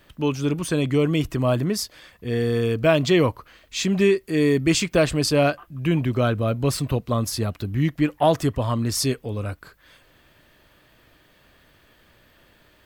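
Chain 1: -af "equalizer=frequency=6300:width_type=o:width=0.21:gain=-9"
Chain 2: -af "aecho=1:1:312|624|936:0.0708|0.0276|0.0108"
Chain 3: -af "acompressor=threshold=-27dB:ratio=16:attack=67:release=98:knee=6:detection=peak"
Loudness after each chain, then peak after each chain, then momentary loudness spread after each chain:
−22.5, −22.5, −28.0 LKFS; −6.5, −6.0, −11.5 dBFS; 9, 9, 6 LU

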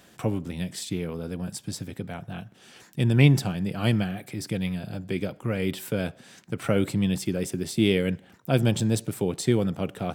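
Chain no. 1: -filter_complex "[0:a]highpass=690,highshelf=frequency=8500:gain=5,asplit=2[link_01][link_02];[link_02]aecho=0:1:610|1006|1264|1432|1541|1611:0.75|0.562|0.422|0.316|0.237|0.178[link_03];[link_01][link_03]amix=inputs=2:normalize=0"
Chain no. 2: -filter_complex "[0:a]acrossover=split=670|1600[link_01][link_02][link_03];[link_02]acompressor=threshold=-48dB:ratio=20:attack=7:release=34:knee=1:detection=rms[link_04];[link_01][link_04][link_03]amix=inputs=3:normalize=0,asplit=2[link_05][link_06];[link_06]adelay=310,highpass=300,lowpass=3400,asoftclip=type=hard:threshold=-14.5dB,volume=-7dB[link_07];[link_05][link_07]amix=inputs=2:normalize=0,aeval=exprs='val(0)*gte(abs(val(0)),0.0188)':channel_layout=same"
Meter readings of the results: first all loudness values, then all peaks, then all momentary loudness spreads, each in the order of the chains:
−31.5, −27.0 LKFS; −11.0, −6.5 dBFS; 9, 13 LU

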